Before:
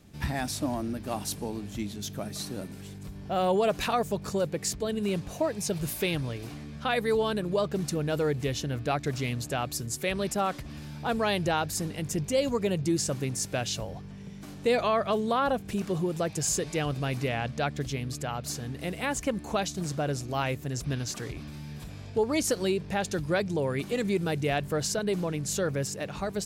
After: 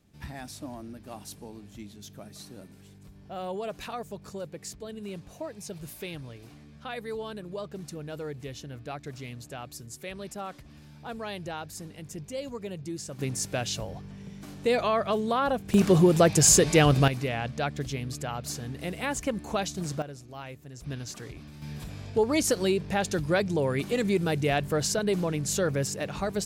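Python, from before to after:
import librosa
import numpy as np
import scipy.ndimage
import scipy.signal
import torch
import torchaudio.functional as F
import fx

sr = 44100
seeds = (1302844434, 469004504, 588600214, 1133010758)

y = fx.gain(x, sr, db=fx.steps((0.0, -9.5), (13.19, 0.0), (15.74, 10.0), (17.08, -0.5), (20.02, -12.0), (20.82, -5.0), (21.62, 2.0)))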